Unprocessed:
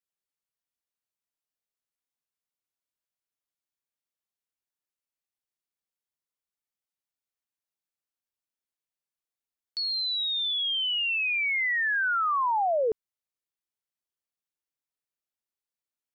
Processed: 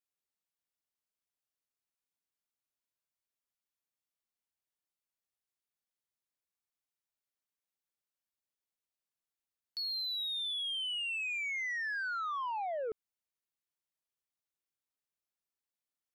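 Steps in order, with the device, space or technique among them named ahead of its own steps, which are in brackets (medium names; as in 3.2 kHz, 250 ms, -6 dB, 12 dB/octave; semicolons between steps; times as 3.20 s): soft clipper into limiter (saturation -24 dBFS, distortion -20 dB; peak limiter -31 dBFS, peak gain reduction 6 dB); trim -3 dB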